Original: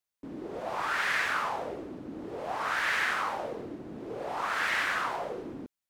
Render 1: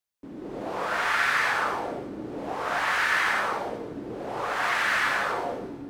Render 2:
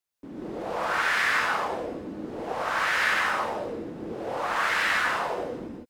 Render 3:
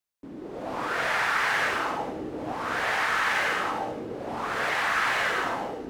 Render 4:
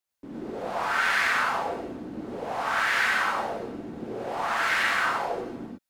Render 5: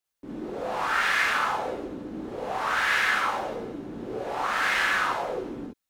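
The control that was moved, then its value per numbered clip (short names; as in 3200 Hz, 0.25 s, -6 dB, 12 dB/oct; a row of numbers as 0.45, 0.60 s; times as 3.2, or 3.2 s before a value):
non-linear reverb, gate: 310, 200, 510, 130, 80 ms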